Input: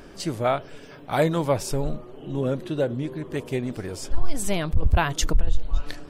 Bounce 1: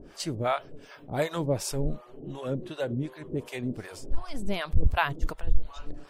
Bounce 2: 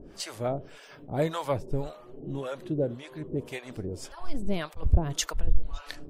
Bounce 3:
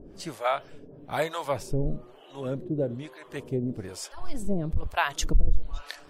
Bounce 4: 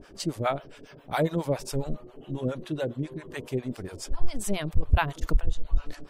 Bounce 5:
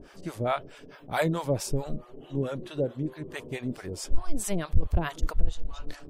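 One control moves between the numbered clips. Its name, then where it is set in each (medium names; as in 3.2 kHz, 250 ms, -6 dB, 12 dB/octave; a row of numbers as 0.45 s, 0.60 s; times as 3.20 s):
harmonic tremolo, rate: 2.7 Hz, 1.8 Hz, 1.1 Hz, 7.3 Hz, 4.6 Hz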